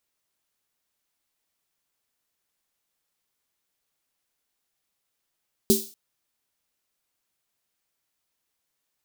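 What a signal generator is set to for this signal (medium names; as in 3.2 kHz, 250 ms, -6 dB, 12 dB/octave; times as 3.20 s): snare drum length 0.24 s, tones 220 Hz, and 390 Hz, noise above 3.9 kHz, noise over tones -4.5 dB, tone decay 0.24 s, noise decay 0.42 s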